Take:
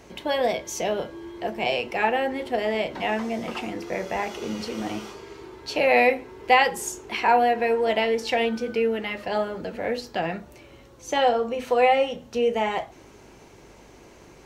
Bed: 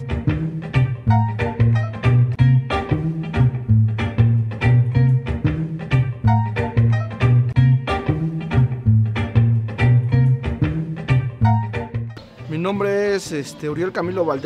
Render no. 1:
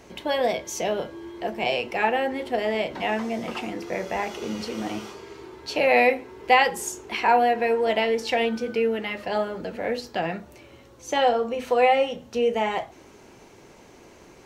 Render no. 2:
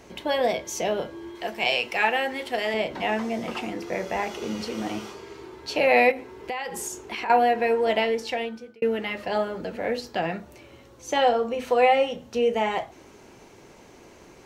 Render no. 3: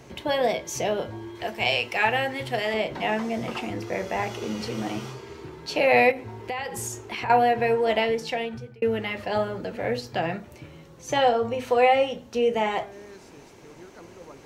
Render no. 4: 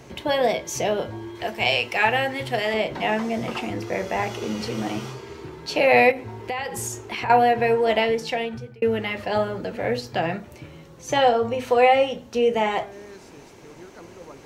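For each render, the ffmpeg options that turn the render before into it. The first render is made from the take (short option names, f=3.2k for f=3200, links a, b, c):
-af "bandreject=f=50:t=h:w=4,bandreject=f=100:t=h:w=4,bandreject=f=150:t=h:w=4"
-filter_complex "[0:a]asettb=1/sr,asplit=3[a][b][c];[a]atrim=end=1.354[d];[b]atrim=start=1.35:end=2.74,asetpts=PTS-STARTPTS,afade=t=in:d=0.004:c=qsin,afade=t=out:st=1.386:d=0.004:c=qsin,tiltshelf=f=970:g=-6[e];[c]atrim=start=2.736[f];[d][e]acrossfade=d=0.004:c1=hsin:c2=qsin[g];[g][f]acrossfade=d=0.004:c1=qsin:c2=hsin,asettb=1/sr,asplit=3[h][i][j];[h]atrim=end=6.114[k];[i]atrim=start=6.11:end=7.3,asetpts=PTS-STARTPTS,afade=t=in:d=0.004:c=qsin,afade=t=out:st=1.186:d=0.004:c=qsin,acompressor=threshold=-28dB:ratio=6:attack=3.2:release=140:knee=1:detection=peak[l];[j]atrim=start=7.296[m];[k][l]acrossfade=d=0.004:c1=hsin:c2=qsin[n];[n][m]acrossfade=d=0.004:c1=qsin:c2=hsin,asplit=2[o][p];[o]atrim=end=8.82,asetpts=PTS-STARTPTS,afade=t=out:st=7.99:d=0.83[q];[p]atrim=start=8.82,asetpts=PTS-STARTPTS,afade=t=in:d=0.004:c=hsin[r];[q][r]concat=n=2:v=0:a=1"
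-filter_complex "[1:a]volume=-26dB[a];[0:a][a]amix=inputs=2:normalize=0"
-af "volume=2.5dB"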